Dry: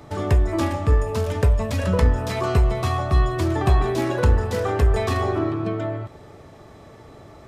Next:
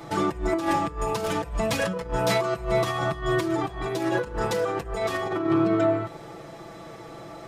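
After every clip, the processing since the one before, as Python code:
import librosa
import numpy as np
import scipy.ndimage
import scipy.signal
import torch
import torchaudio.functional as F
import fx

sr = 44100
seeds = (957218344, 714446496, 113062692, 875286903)

y = fx.low_shelf(x, sr, hz=140.0, db=-10.0)
y = fx.over_compress(y, sr, threshold_db=-27.0, ratio=-0.5)
y = y + 0.86 * np.pad(y, (int(6.0 * sr / 1000.0), 0))[:len(y)]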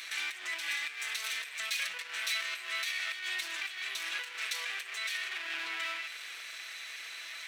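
y = fx.lower_of_two(x, sr, delay_ms=0.5)
y = fx.highpass_res(y, sr, hz=2600.0, q=2.1)
y = fx.env_flatten(y, sr, amount_pct=50)
y = y * 10.0 ** (-6.5 / 20.0)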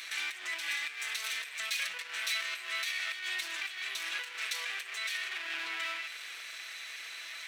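y = x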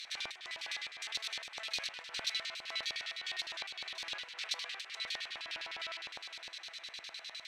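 y = fx.echo_feedback(x, sr, ms=428, feedback_pct=58, wet_db=-11.5)
y = fx.filter_lfo_bandpass(y, sr, shape='square', hz=9.8, low_hz=730.0, high_hz=4300.0, q=2.1)
y = y * 10.0 ** (3.5 / 20.0)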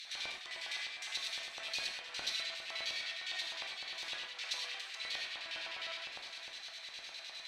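y = fx.rev_gated(x, sr, seeds[0], gate_ms=140, shape='flat', drr_db=0.5)
y = y * 10.0 ** (-3.0 / 20.0)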